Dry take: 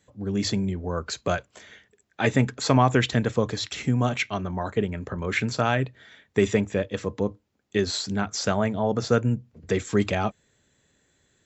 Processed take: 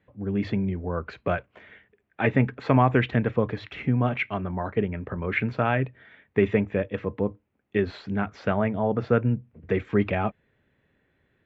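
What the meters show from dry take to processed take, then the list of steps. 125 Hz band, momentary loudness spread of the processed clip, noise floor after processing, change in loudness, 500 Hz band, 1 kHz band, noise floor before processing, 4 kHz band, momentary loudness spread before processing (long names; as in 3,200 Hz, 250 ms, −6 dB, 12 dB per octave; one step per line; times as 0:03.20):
0.0 dB, 8 LU, −71 dBFS, −0.5 dB, −0.5 dB, −1.0 dB, −69 dBFS, −11.5 dB, 8 LU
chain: Chebyshev low-pass filter 2,500 Hz, order 3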